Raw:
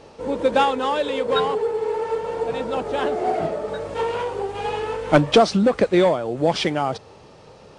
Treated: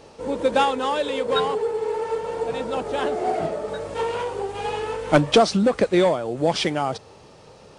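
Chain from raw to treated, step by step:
high-shelf EQ 7,500 Hz +9 dB
level −1.5 dB

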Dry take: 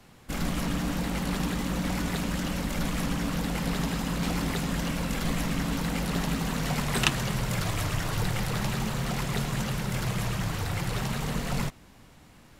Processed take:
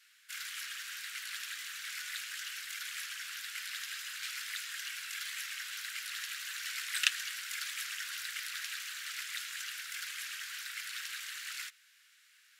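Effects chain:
elliptic high-pass filter 1,500 Hz, stop band 50 dB
level −2.5 dB

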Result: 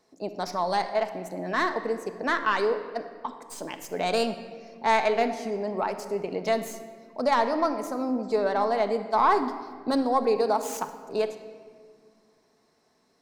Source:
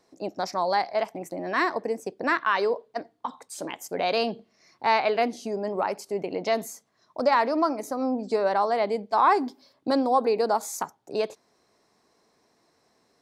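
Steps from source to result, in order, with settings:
stylus tracing distortion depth 0.047 ms
0:10.36–0:10.81: high-pass filter 190 Hz
convolution reverb RT60 1.9 s, pre-delay 5 ms, DRR 7 dB
level −2 dB

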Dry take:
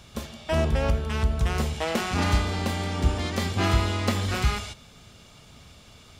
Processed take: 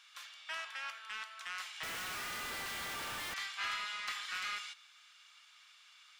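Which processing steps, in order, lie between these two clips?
high-pass filter 1,300 Hz 24 dB per octave
mid-hump overdrive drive 10 dB, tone 2,800 Hz, clips at −17 dBFS
0:01.83–0:03.34: comparator with hysteresis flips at −42 dBFS
level −8.5 dB

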